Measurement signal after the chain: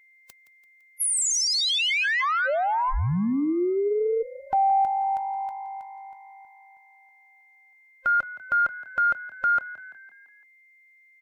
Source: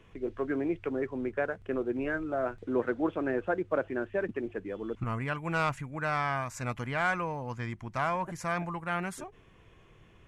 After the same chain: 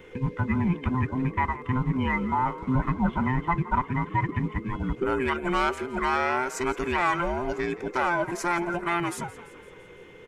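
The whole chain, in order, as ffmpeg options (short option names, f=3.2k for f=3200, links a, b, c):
-filter_complex "[0:a]afftfilt=real='real(if(between(b,1,1008),(2*floor((b-1)/24)+1)*24-b,b),0)':imag='imag(if(between(b,1,1008),(2*floor((b-1)/24)+1)*24-b,b),0)*if(between(b,1,1008),-1,1)':win_size=2048:overlap=0.75,asplit=2[a][b];[b]alimiter=level_in=3.5dB:limit=-24dB:level=0:latency=1:release=417,volume=-3.5dB,volume=3dB[c];[a][c]amix=inputs=2:normalize=0,asplit=6[d][e][f][g][h][i];[e]adelay=169,afreqshift=50,volume=-17dB[j];[f]adelay=338,afreqshift=100,volume=-22.2dB[k];[g]adelay=507,afreqshift=150,volume=-27.4dB[l];[h]adelay=676,afreqshift=200,volume=-32.6dB[m];[i]adelay=845,afreqshift=250,volume=-37.8dB[n];[d][j][k][l][m][n]amix=inputs=6:normalize=0,acontrast=31,aeval=exprs='val(0)+0.00282*sin(2*PI*2100*n/s)':c=same,volume=-4dB"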